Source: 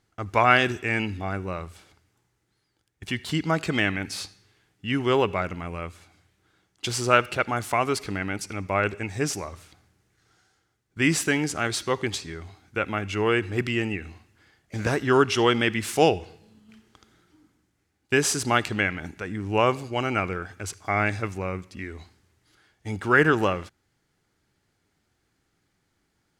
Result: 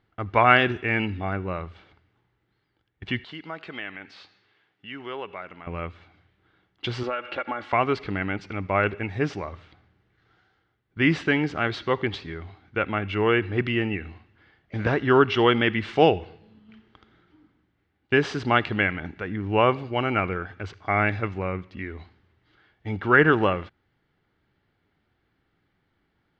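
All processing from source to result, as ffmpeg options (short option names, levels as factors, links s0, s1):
-filter_complex "[0:a]asettb=1/sr,asplit=3[s0][s1][s2];[s0]atrim=end=3.244[s3];[s1]atrim=start=3.24:end=5.67,asetpts=PTS-STARTPTS,afade=t=in:d=0.004:c=qsin,afade=t=out:st=2.426:d=0.004:c=qsin,highpass=f=570:p=1,acompressor=threshold=0.00316:ratio=1.5:attack=3.2:release=140:knee=1:detection=peak[s4];[s2]atrim=start=5.666[s5];[s3][s4]acrossfade=d=0.004:c1=hsin:c2=qsin[s6];[s6][s5]acrossfade=d=0.004:c1=qsin:c2=hsin,asettb=1/sr,asplit=3[s7][s8][s9];[s7]atrim=end=7.034[s10];[s8]atrim=start=7.03:end=7.73,asetpts=PTS-STARTPTS,afade=t=in:d=0.004:c=qsin,afade=t=out:st=0.696:d=0.004:c=qsin,bass=f=250:g=-13,treble=f=4000:g=-5,acompressor=threshold=0.0501:ratio=16:attack=3.2:release=140:knee=1:detection=peak,aecho=1:1:3.6:0.59,atrim=end_sample=30870[s11];[s9]atrim=start=7.726[s12];[s10][s11]acrossfade=d=0.004:c1=hsin:c2=qsin[s13];[s13][s12]acrossfade=d=0.004:c1=qsin:c2=hsin,lowpass=f=3500:w=0.5412,lowpass=f=3500:w=1.3066,bandreject=f=2500:w=20,volume=1.19"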